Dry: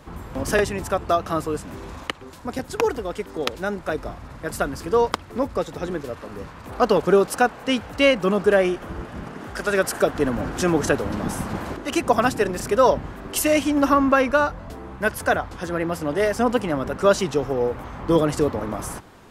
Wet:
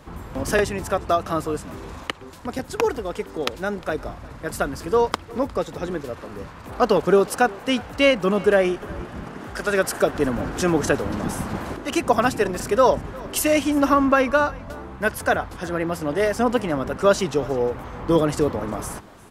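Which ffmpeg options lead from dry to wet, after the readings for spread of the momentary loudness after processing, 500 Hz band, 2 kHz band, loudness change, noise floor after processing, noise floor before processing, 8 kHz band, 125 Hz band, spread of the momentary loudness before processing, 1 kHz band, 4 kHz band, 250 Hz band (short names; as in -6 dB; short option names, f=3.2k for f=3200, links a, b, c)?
15 LU, 0.0 dB, 0.0 dB, 0.0 dB, -41 dBFS, -41 dBFS, 0.0 dB, 0.0 dB, 15 LU, 0.0 dB, 0.0 dB, 0.0 dB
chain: -af "aecho=1:1:356:0.0794"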